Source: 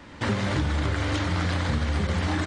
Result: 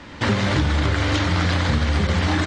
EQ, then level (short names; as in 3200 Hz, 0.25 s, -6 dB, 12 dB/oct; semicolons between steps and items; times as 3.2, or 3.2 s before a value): air absorption 95 m; high shelf 3700 Hz +9.5 dB; +5.5 dB